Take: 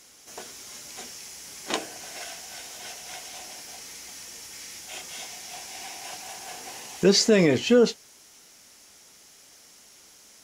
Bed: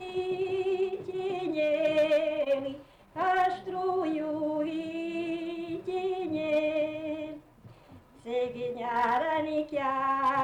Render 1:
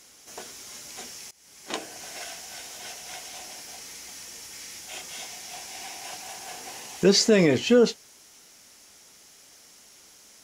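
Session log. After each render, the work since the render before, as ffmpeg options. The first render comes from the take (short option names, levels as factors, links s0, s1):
-filter_complex "[0:a]asplit=2[s0][s1];[s0]atrim=end=1.31,asetpts=PTS-STARTPTS,afade=t=out:st=1.306:d=0.004:c=hsin:silence=0.0749894[s2];[s1]atrim=start=1.31,asetpts=PTS-STARTPTS,afade=t=in:d=0.72:silence=0.0749894[s3];[s2][s3]concat=n=2:v=0:a=1"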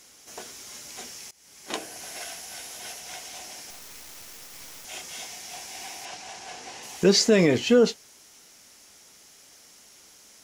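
-filter_complex "[0:a]asettb=1/sr,asplit=3[s0][s1][s2];[s0]atrim=end=1.684[s3];[s1]atrim=start=1.68:end=3,asetpts=PTS-STARTPTS,afade=t=in:d=0.004:c=qsin,afade=t=out:st=1.316:d=0.004:c=qsin,equalizer=f=11000:w=4:g=7[s4];[s2]atrim=start=2.996[s5];[s3][s4]acrossfade=d=0.004:c1=hsin:c2=qsin[s6];[s6][s5]acrossfade=d=0.004:c1=qsin:c2=hsin,asettb=1/sr,asplit=3[s7][s8][s9];[s7]atrim=end=3.704[s10];[s8]atrim=start=3.7:end=4.85,asetpts=PTS-STARTPTS,afade=t=in:d=0.004:c=qsin,afade=t=out:st=1.146:d=0.004:c=qsin,acrusher=bits=4:dc=4:mix=0:aa=0.000001[s11];[s9]atrim=start=4.846[s12];[s10][s11]acrossfade=d=0.004:c1=hsin:c2=qsin[s13];[s13][s12]acrossfade=d=0.004:c1=qsin:c2=hsin,asettb=1/sr,asplit=3[s14][s15][s16];[s14]atrim=end=6.054[s17];[s15]atrim=start=6.05:end=6.83,asetpts=PTS-STARTPTS,afade=t=in:d=0.004:c=qsin,afade=t=out:st=0.776:d=0.004:c=qsin,lowpass=6600[s18];[s16]atrim=start=6.826[s19];[s17][s18]acrossfade=d=0.004:c1=hsin:c2=qsin[s20];[s20][s19]acrossfade=d=0.004:c1=qsin:c2=hsin"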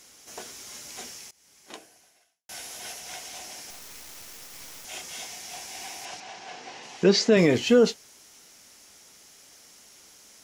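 -filter_complex "[0:a]asettb=1/sr,asplit=3[s0][s1][s2];[s0]atrim=end=6.204[s3];[s1]atrim=start=6.2:end=7.37,asetpts=PTS-STARTPTS,afade=t=in:d=0.004:c=qsin,afade=t=out:st=1.166:d=0.004:c=qsin,highpass=120,lowpass=4800[s4];[s2]atrim=start=7.366[s5];[s3][s4]acrossfade=d=0.004:c1=hsin:c2=qsin[s6];[s6][s5]acrossfade=d=0.004:c1=qsin:c2=hsin,asplit=2[s7][s8];[s7]atrim=end=2.49,asetpts=PTS-STARTPTS,afade=t=out:st=1.08:d=1.41:c=qua[s9];[s8]atrim=start=2.49,asetpts=PTS-STARTPTS,afade=t=in:d=0.004:c=hsin[s10];[s9][s10]concat=n=2:v=0:a=1"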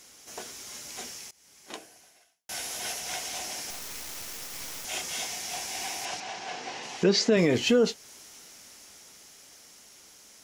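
-af "dynaudnorm=f=310:g=13:m=1.78,alimiter=limit=0.224:level=0:latency=1:release=299"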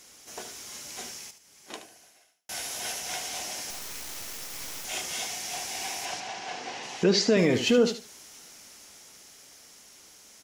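-af "aecho=1:1:74|148|222:0.299|0.0657|0.0144"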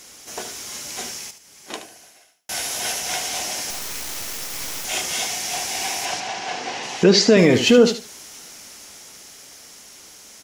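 -af "volume=2.66"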